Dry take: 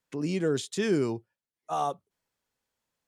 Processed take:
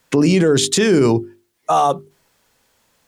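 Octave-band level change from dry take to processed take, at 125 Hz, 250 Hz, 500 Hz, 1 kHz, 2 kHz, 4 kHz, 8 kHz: +15.0 dB, +14.0 dB, +13.5 dB, +14.5 dB, +13.5 dB, +17.5 dB, +19.0 dB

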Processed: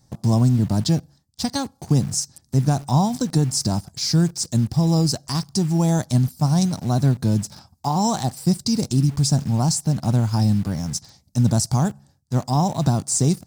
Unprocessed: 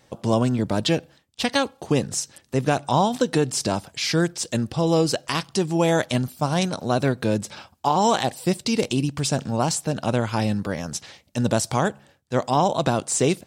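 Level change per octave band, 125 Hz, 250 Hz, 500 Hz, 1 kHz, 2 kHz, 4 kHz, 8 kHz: +8.0 dB, +3.0 dB, -7.0 dB, -3.5 dB, -10.5 dB, -0.5 dB, +2.5 dB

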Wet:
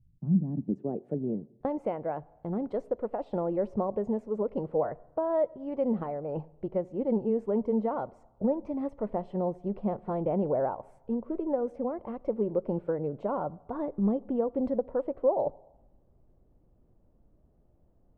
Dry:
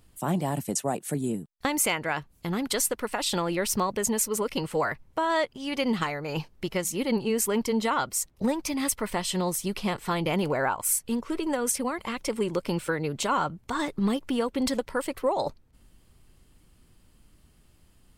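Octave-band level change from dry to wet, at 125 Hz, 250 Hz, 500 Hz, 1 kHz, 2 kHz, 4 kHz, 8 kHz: -2.0 dB, -2.0 dB, +0.5 dB, -7.0 dB, under -20 dB, under -35 dB, under -40 dB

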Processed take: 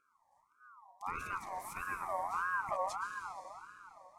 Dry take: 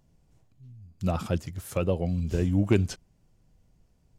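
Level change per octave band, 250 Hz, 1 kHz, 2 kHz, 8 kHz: -30.5 dB, +6.0 dB, +4.0 dB, -7.5 dB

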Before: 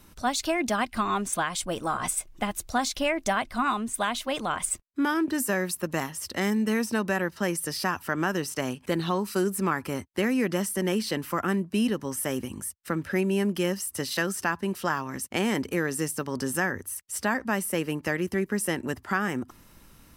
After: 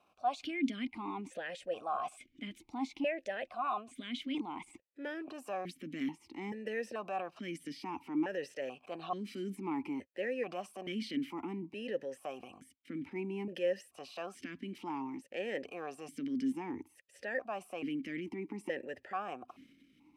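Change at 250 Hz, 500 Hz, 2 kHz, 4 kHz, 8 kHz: -10.5 dB, -9.5 dB, -14.0 dB, -13.5 dB, -27.0 dB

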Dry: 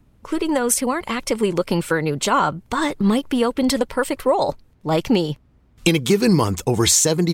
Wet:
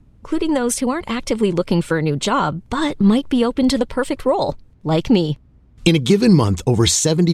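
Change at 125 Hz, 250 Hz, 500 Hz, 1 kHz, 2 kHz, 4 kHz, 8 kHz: +5.0 dB, +3.5 dB, +1.0 dB, -1.0 dB, -1.0 dB, +1.5 dB, -2.5 dB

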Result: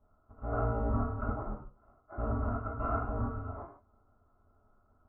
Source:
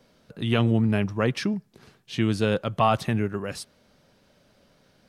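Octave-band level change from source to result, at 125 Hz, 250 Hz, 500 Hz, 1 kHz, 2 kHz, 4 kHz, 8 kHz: -9.5 dB, -14.0 dB, -11.0 dB, -8.5 dB, -15.5 dB, under -40 dB, under -35 dB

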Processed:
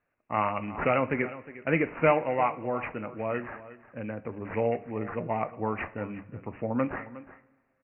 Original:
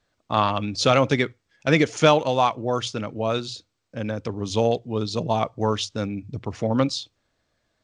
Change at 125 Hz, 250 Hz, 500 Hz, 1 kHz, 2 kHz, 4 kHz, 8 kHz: -9.5 dB, -7.0 dB, -6.0 dB, -6.0 dB, -4.0 dB, under -20 dB, under -40 dB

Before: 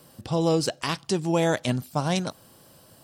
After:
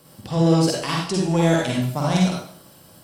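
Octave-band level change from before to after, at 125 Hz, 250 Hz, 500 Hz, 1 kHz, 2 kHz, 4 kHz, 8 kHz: +7.5 dB, +7.0 dB, +3.0 dB, +3.5 dB, +3.5 dB, +4.0 dB, +4.0 dB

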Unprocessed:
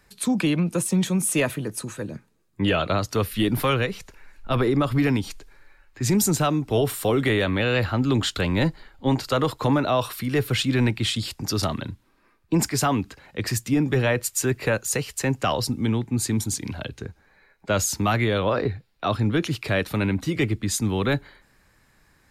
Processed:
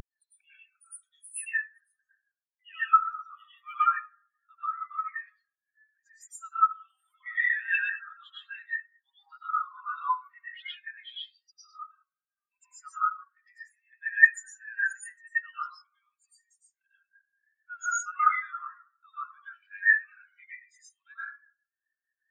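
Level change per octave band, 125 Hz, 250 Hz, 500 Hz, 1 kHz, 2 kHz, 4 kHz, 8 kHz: under -40 dB, under -40 dB, under -40 dB, -0.5 dB, +2.0 dB, -18.5 dB, -15.5 dB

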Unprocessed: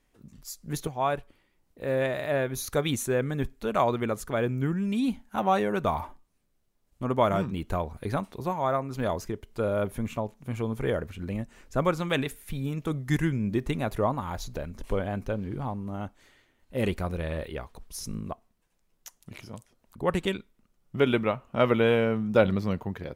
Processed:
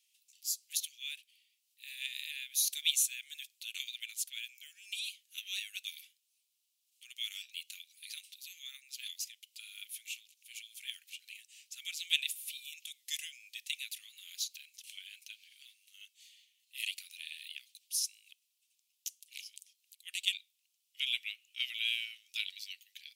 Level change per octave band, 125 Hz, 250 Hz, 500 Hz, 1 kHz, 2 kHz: under -40 dB, under -40 dB, under -40 dB, under -40 dB, -6.5 dB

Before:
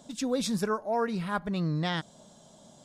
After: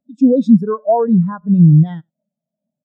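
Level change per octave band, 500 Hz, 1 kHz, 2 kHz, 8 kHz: +13.5 dB, +9.5 dB, no reading, under -15 dB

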